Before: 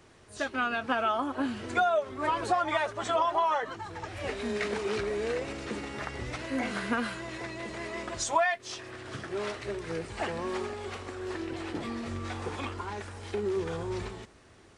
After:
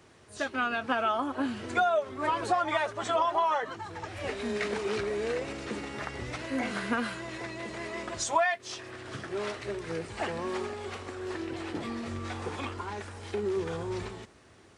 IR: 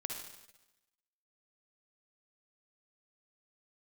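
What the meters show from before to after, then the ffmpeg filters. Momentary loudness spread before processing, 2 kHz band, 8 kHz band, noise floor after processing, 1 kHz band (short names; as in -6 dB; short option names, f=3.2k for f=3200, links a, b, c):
11 LU, 0.0 dB, 0.0 dB, -56 dBFS, 0.0 dB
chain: -af "highpass=63"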